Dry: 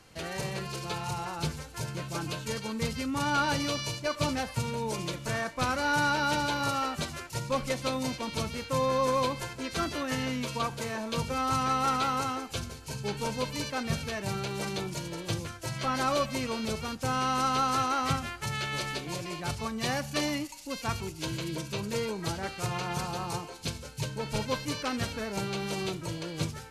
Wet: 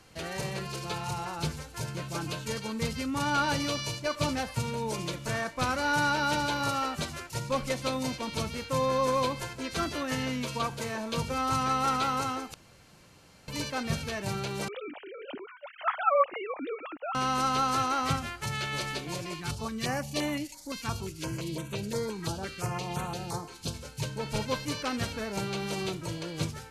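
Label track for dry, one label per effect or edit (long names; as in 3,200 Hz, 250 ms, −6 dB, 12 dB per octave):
12.540000	13.480000	fill with room tone
14.680000	17.150000	three sine waves on the formant tracks
19.340000	23.740000	notch on a step sequencer 5.8 Hz 600–5,000 Hz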